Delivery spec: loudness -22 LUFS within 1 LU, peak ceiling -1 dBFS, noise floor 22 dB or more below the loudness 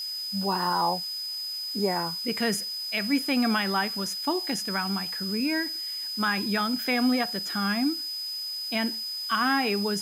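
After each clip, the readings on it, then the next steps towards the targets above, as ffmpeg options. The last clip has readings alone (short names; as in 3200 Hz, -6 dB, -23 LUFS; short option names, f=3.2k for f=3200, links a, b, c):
steady tone 5000 Hz; tone level -31 dBFS; noise floor -34 dBFS; noise floor target -49 dBFS; loudness -27.0 LUFS; peak -14.0 dBFS; loudness target -22.0 LUFS
-> -af "bandreject=f=5k:w=30"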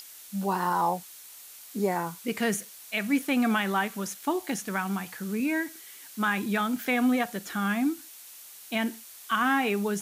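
steady tone none; noise floor -48 dBFS; noise floor target -51 dBFS
-> -af "afftdn=nr=6:nf=-48"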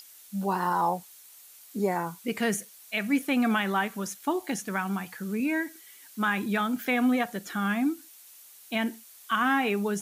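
noise floor -52 dBFS; loudness -28.5 LUFS; peak -15.0 dBFS; loudness target -22.0 LUFS
-> -af "volume=6.5dB"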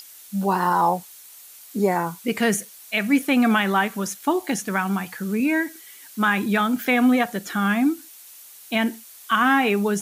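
loudness -22.0 LUFS; peak -8.5 dBFS; noise floor -45 dBFS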